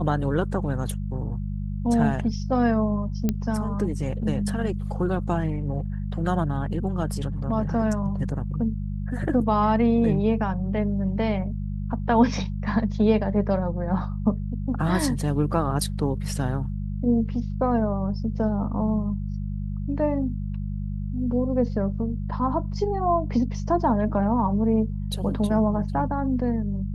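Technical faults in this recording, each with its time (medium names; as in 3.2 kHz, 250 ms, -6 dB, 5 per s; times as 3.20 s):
hum 50 Hz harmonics 4 -29 dBFS
3.29 s: pop -11 dBFS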